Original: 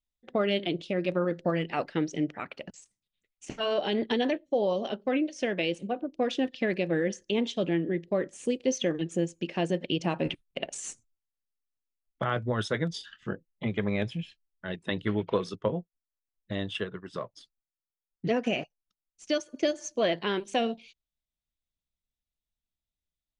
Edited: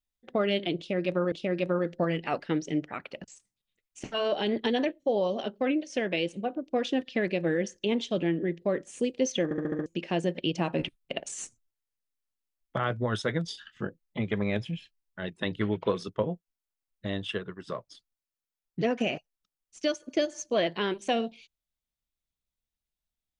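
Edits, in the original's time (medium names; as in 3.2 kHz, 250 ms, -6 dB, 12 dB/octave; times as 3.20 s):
0.78–1.32 s: loop, 2 plays
8.90 s: stutter in place 0.07 s, 6 plays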